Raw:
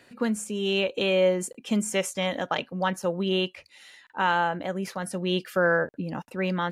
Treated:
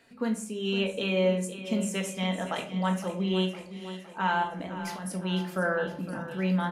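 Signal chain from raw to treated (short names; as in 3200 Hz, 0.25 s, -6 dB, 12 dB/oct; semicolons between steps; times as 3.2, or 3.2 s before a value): 4.43–5.12 negative-ratio compressor -35 dBFS, ratio -1; feedback echo 0.511 s, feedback 57%, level -13 dB; shoebox room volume 440 m³, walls furnished, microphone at 1.6 m; gain -6.5 dB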